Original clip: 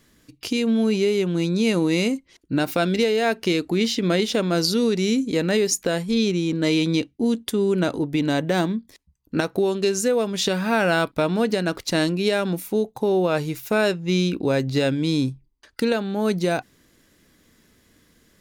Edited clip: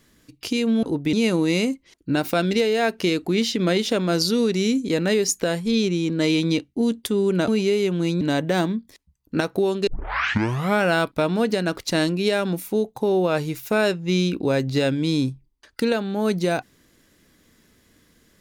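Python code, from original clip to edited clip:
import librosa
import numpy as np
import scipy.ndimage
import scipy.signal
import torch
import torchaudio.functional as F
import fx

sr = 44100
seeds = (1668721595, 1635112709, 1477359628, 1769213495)

y = fx.edit(x, sr, fx.swap(start_s=0.83, length_s=0.73, other_s=7.91, other_length_s=0.3),
    fx.tape_start(start_s=9.87, length_s=0.96), tone=tone)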